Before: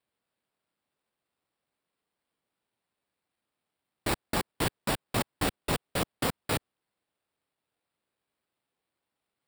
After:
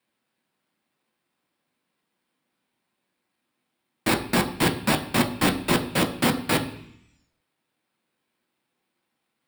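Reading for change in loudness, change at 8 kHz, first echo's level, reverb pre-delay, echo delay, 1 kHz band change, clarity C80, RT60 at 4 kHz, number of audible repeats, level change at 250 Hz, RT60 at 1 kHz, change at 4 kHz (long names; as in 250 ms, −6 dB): +8.0 dB, +6.0 dB, no echo audible, 3 ms, no echo audible, +7.0 dB, 14.5 dB, 1.2 s, no echo audible, +11.0 dB, 0.70 s, +7.5 dB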